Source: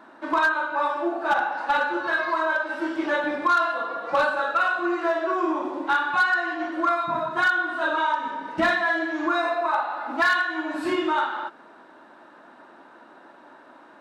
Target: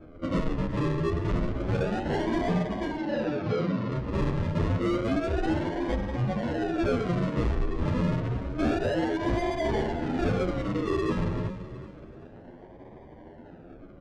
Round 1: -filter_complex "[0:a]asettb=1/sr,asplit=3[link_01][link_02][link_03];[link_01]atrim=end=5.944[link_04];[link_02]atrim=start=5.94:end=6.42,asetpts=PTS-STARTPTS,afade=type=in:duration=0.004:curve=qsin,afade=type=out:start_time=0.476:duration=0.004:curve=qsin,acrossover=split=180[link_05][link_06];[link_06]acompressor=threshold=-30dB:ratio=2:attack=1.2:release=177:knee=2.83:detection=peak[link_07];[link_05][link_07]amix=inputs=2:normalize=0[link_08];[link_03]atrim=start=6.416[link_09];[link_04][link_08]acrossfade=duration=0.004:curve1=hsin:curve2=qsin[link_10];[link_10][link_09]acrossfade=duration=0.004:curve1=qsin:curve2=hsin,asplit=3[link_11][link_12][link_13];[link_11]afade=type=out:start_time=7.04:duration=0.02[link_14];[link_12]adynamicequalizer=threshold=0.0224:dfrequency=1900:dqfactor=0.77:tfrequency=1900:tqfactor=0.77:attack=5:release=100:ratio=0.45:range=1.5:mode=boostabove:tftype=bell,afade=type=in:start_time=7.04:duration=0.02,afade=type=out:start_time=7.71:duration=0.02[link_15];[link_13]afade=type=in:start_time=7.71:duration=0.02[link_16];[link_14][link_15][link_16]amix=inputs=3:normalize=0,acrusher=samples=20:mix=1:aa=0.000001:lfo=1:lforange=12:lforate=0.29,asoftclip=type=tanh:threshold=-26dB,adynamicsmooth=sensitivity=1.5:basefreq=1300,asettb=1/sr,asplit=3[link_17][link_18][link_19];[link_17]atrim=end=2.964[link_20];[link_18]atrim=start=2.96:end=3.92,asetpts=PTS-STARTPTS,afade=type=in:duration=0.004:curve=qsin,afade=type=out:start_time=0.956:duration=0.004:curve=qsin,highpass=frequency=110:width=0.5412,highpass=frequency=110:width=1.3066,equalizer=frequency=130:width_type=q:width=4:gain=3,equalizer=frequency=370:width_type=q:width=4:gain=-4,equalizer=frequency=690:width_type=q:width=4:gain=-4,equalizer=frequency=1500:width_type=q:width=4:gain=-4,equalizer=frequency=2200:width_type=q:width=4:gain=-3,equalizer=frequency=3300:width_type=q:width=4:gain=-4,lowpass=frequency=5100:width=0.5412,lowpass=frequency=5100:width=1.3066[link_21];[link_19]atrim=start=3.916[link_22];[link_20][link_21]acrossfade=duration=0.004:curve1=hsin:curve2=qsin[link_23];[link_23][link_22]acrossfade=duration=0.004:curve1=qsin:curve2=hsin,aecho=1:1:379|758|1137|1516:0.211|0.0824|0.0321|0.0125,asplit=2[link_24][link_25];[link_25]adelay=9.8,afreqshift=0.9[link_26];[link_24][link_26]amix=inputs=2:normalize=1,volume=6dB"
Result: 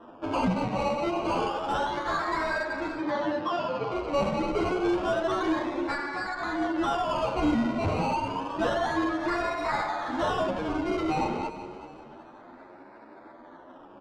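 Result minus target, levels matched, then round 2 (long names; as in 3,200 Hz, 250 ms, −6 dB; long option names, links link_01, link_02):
sample-and-hold swept by an LFO: distortion −14 dB
-filter_complex "[0:a]asettb=1/sr,asplit=3[link_01][link_02][link_03];[link_01]atrim=end=5.944[link_04];[link_02]atrim=start=5.94:end=6.42,asetpts=PTS-STARTPTS,afade=type=in:duration=0.004:curve=qsin,afade=type=out:start_time=0.476:duration=0.004:curve=qsin,acrossover=split=180[link_05][link_06];[link_06]acompressor=threshold=-30dB:ratio=2:attack=1.2:release=177:knee=2.83:detection=peak[link_07];[link_05][link_07]amix=inputs=2:normalize=0[link_08];[link_03]atrim=start=6.416[link_09];[link_04][link_08]acrossfade=duration=0.004:curve1=hsin:curve2=qsin[link_10];[link_10][link_09]acrossfade=duration=0.004:curve1=qsin:curve2=hsin,asplit=3[link_11][link_12][link_13];[link_11]afade=type=out:start_time=7.04:duration=0.02[link_14];[link_12]adynamicequalizer=threshold=0.0224:dfrequency=1900:dqfactor=0.77:tfrequency=1900:tqfactor=0.77:attack=5:release=100:ratio=0.45:range=1.5:mode=boostabove:tftype=bell,afade=type=in:start_time=7.04:duration=0.02,afade=type=out:start_time=7.71:duration=0.02[link_15];[link_13]afade=type=in:start_time=7.71:duration=0.02[link_16];[link_14][link_15][link_16]amix=inputs=3:normalize=0,acrusher=samples=46:mix=1:aa=0.000001:lfo=1:lforange=27.6:lforate=0.29,asoftclip=type=tanh:threshold=-26dB,adynamicsmooth=sensitivity=1.5:basefreq=1300,asettb=1/sr,asplit=3[link_17][link_18][link_19];[link_17]atrim=end=2.964[link_20];[link_18]atrim=start=2.96:end=3.92,asetpts=PTS-STARTPTS,afade=type=in:duration=0.004:curve=qsin,afade=type=out:start_time=0.956:duration=0.004:curve=qsin,highpass=frequency=110:width=0.5412,highpass=frequency=110:width=1.3066,equalizer=frequency=130:width_type=q:width=4:gain=3,equalizer=frequency=370:width_type=q:width=4:gain=-4,equalizer=frequency=690:width_type=q:width=4:gain=-4,equalizer=frequency=1500:width_type=q:width=4:gain=-4,equalizer=frequency=2200:width_type=q:width=4:gain=-3,equalizer=frequency=3300:width_type=q:width=4:gain=-4,lowpass=frequency=5100:width=0.5412,lowpass=frequency=5100:width=1.3066[link_21];[link_19]atrim=start=3.916[link_22];[link_20][link_21]acrossfade=duration=0.004:curve1=hsin:curve2=qsin[link_23];[link_23][link_22]acrossfade=duration=0.004:curve1=qsin:curve2=hsin,aecho=1:1:379|758|1137|1516:0.211|0.0824|0.0321|0.0125,asplit=2[link_24][link_25];[link_25]adelay=9.8,afreqshift=0.9[link_26];[link_24][link_26]amix=inputs=2:normalize=1,volume=6dB"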